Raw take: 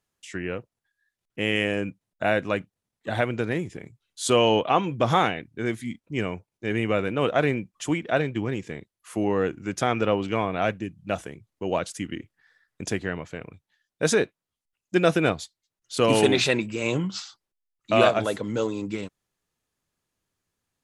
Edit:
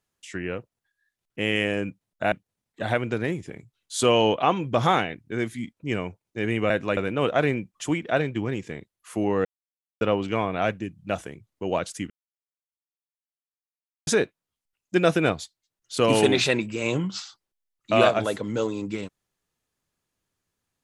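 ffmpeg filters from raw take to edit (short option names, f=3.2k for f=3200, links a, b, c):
-filter_complex "[0:a]asplit=8[a][b][c][d][e][f][g][h];[a]atrim=end=2.322[i];[b]atrim=start=2.588:end=6.972[j];[c]atrim=start=2.318:end=2.592[k];[d]atrim=start=6.968:end=9.45,asetpts=PTS-STARTPTS,afade=t=out:st=2.478:d=0.004:c=hsin[l];[e]atrim=start=9.45:end=10.01,asetpts=PTS-STARTPTS,volume=0[m];[f]atrim=start=10.01:end=12.1,asetpts=PTS-STARTPTS,afade=t=in:d=0.004:c=hsin,afade=t=out:st=2.086:d=0.004:c=hsin[n];[g]atrim=start=12.1:end=14.07,asetpts=PTS-STARTPTS,volume=0[o];[h]atrim=start=14.07,asetpts=PTS-STARTPTS,afade=t=in:d=0.004:c=hsin[p];[i][j]acrossfade=d=0.004:c1=hsin:c2=hsin[q];[q][k]acrossfade=d=0.004:c1=hsin:c2=hsin[r];[l][m][n][o][p]concat=n=5:v=0:a=1[s];[r][s]acrossfade=d=0.004:c1=hsin:c2=hsin"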